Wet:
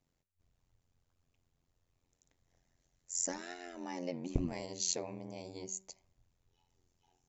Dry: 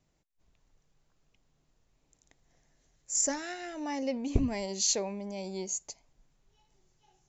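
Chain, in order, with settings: AM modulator 88 Hz, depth 100%; de-hum 190.9 Hz, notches 13; gain -3 dB

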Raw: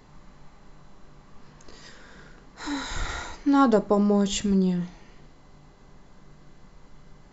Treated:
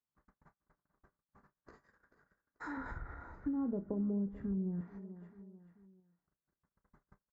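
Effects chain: gate -42 dBFS, range -42 dB; resonant high shelf 2200 Hz -11.5 dB, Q 3; treble ducked by the level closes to 420 Hz, closed at -17 dBFS; doubler 30 ms -13.5 dB; feedback echo 0.437 s, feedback 37%, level -18.5 dB; random-step tremolo; 2.77–4.81 tilt -3 dB/oct; compressor 3:1, threshold -33 dBFS, peak gain reduction 16.5 dB; HPF 54 Hz 12 dB/oct; gain -5.5 dB

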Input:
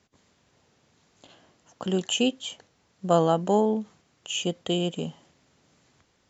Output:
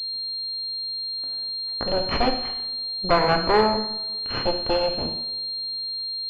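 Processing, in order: added harmonics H 4 -13 dB, 8 -10 dB, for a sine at -6.5 dBFS; two-slope reverb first 0.72 s, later 2.7 s, from -25 dB, DRR 4 dB; pulse-width modulation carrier 4200 Hz

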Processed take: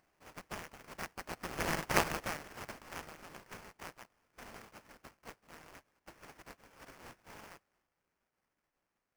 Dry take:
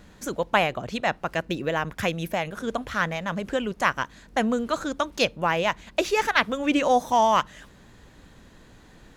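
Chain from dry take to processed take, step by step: spectral contrast lowered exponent 0.19; Doppler pass-by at 1.9, 16 m/s, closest 2.2 m; sample-rate reducer 3800 Hz, jitter 20%; gain -2 dB

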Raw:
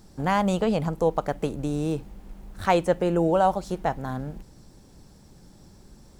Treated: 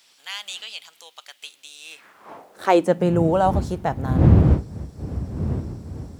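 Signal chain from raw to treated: wind noise 200 Hz -27 dBFS; high-pass sweep 3200 Hz -> 72 Hz, 1.79–3.36; gain +1.5 dB

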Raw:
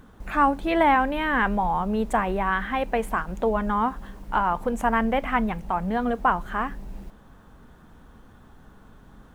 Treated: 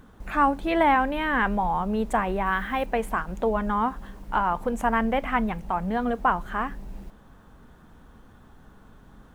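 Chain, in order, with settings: 2.46–2.86 high shelf 10000 Hz +11 dB; gain -1 dB

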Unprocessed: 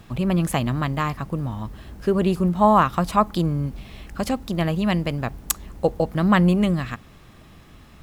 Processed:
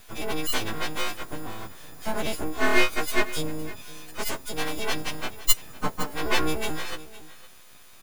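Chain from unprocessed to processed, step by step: frequency quantiser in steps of 6 st; 5.94–6.65 de-hum 54.27 Hz, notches 34; full-wave rectifier; on a send: echo 0.511 s -17.5 dB; on the sum: gain -5.5 dB

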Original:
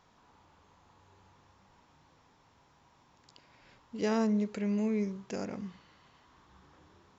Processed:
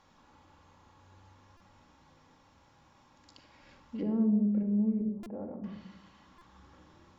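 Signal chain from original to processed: 5.01–5.64 ladder low-pass 1000 Hz, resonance 30%; treble ducked by the level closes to 360 Hz, closed at -30.5 dBFS; reverb RT60 0.95 s, pre-delay 4 ms, DRR 3 dB; stuck buffer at 1.57/5.23/6.38, samples 128, times 10

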